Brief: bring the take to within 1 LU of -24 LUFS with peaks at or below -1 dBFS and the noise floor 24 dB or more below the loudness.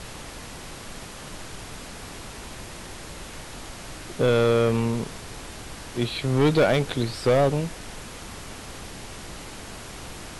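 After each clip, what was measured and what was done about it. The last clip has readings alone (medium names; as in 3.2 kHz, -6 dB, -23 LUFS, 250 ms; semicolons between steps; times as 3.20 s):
clipped samples 1.0%; clipping level -14.0 dBFS; noise floor -40 dBFS; noise floor target -47 dBFS; loudness -23.0 LUFS; peak level -14.0 dBFS; loudness target -24.0 LUFS
-> clip repair -14 dBFS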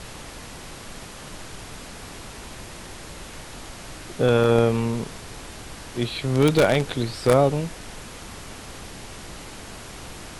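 clipped samples 0.0%; noise floor -40 dBFS; noise floor target -46 dBFS
-> noise print and reduce 6 dB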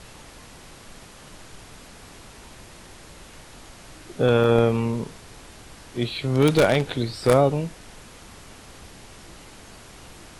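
noise floor -46 dBFS; loudness -21.5 LUFS; peak level -5.0 dBFS; loudness target -24.0 LUFS
-> trim -2.5 dB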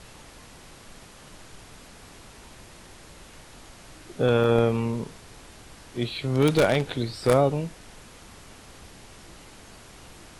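loudness -24.0 LUFS; peak level -7.5 dBFS; noise floor -48 dBFS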